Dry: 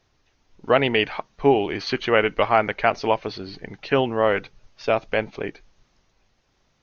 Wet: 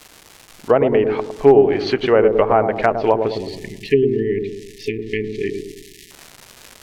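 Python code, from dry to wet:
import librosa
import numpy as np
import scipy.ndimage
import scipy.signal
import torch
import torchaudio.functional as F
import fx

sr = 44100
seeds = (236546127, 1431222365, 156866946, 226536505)

p1 = fx.dmg_crackle(x, sr, seeds[0], per_s=470.0, level_db=-31.0)
p2 = fx.env_lowpass_down(p1, sr, base_hz=1100.0, full_db=-16.0)
p3 = fx.dynamic_eq(p2, sr, hz=420.0, q=2.5, threshold_db=-35.0, ratio=4.0, max_db=5)
p4 = fx.rider(p3, sr, range_db=10, speed_s=2.0)
p5 = p3 + (p4 * 10.0 ** (-2.0 / 20.0))
p6 = fx.quant_dither(p5, sr, seeds[1], bits=12, dither='triangular')
p7 = fx.spec_erase(p6, sr, start_s=3.32, length_s=2.79, low_hz=450.0, high_hz=1700.0)
p8 = p7 + fx.echo_wet_lowpass(p7, sr, ms=107, feedback_pct=47, hz=630.0, wet_db=-4, dry=0)
y = p8 * 10.0 ** (-2.0 / 20.0)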